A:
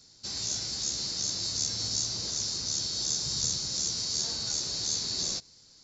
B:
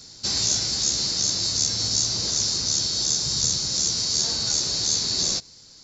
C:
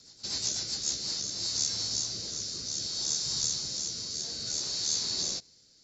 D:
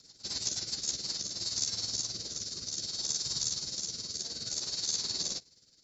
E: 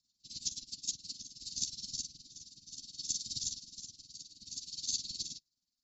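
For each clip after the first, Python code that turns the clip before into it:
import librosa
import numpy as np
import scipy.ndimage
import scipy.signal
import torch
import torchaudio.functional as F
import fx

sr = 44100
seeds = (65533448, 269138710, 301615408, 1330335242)

y1 = fx.rider(x, sr, range_db=5, speed_s=0.5)
y1 = y1 * 10.0 ** (8.0 / 20.0)
y2 = fx.low_shelf(y1, sr, hz=190.0, db=-6.5)
y2 = fx.rotary_switch(y2, sr, hz=8.0, then_hz=0.6, switch_at_s=0.55)
y2 = y2 * 10.0 ** (-6.5 / 20.0)
y3 = y2 * (1.0 - 0.6 / 2.0 + 0.6 / 2.0 * np.cos(2.0 * np.pi * 19.0 * (np.arange(len(y2)) / sr)))
y4 = fx.whisperise(y3, sr, seeds[0])
y4 = scipy.signal.sosfilt(scipy.signal.ellip(3, 1.0, 40, [280.0, 2900.0], 'bandstop', fs=sr, output='sos'), y4)
y4 = fx.upward_expand(y4, sr, threshold_db=-45.0, expansion=2.5)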